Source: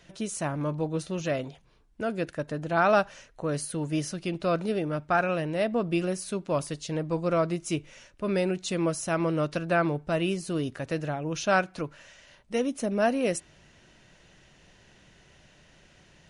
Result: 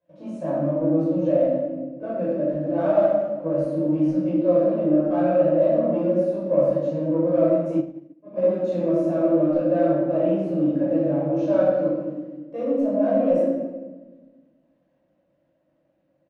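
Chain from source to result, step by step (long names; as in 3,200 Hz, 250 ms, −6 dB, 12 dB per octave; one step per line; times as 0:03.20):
leveller curve on the samples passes 3
pair of resonant band-passes 410 Hz, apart 0.84 octaves
far-end echo of a speakerphone 110 ms, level −22 dB
chorus effect 2 Hz, delay 18.5 ms, depth 3.1 ms
convolution reverb RT60 1.3 s, pre-delay 11 ms, DRR −7 dB
0:07.78–0:08.43: expander for the loud parts 2.5 to 1, over −30 dBFS
level −3 dB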